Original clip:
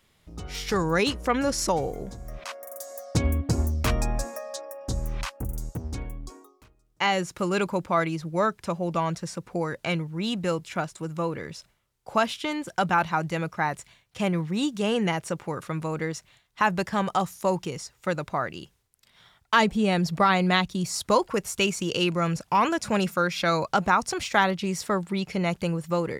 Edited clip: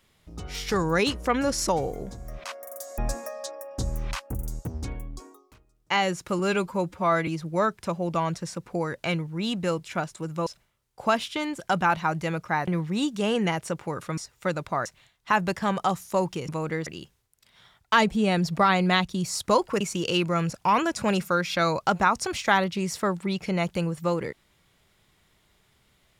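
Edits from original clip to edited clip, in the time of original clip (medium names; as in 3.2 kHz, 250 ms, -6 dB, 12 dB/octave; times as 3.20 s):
2.98–4.08 s: delete
7.49–8.08 s: stretch 1.5×
11.27–11.55 s: delete
13.76–14.28 s: delete
15.78–16.16 s: swap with 17.79–18.47 s
21.41–21.67 s: delete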